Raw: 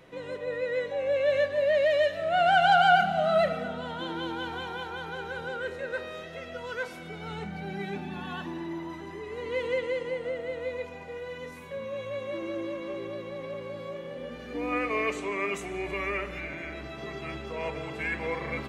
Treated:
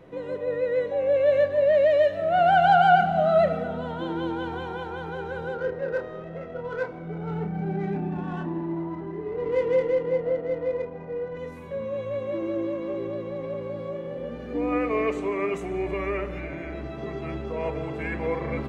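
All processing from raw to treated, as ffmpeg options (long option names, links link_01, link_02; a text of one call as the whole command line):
ffmpeg -i in.wav -filter_complex "[0:a]asettb=1/sr,asplit=3[link_01][link_02][link_03];[link_01]atrim=end=5.554[link_04];[link_02]atrim=start=5.55:end=11.37,asetpts=PTS-STARTPTS,afade=type=in:duration=0.004:curve=qsin,afade=type=out:start_time=5.816:duration=0.004:curve=qsin,asplit=2[link_05][link_06];[link_06]adelay=31,volume=-4dB[link_07];[link_05][link_07]amix=inputs=2:normalize=0,atrim=end_sample=256662,adynamicsmooth=sensitivity=3.5:basefreq=1400[link_08];[link_03]atrim=start=11.366[link_09];[link_04][link_08]acrossfade=duration=0.004:curve1=hsin:curve2=qsin[link_10];[link_10][link_09]acrossfade=duration=0.004:curve1=qsin:curve2=hsin,tiltshelf=frequency=1300:gain=7.5,bandreject=frequency=50:width_type=h:width=6,bandreject=frequency=100:width_type=h:width=6,bandreject=frequency=150:width_type=h:width=6,bandreject=frequency=200:width_type=h:width=6,bandreject=frequency=250:width_type=h:width=6" out.wav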